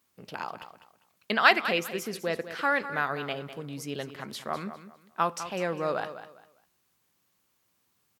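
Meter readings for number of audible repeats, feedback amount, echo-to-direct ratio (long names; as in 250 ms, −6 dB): 2, 26%, −11.5 dB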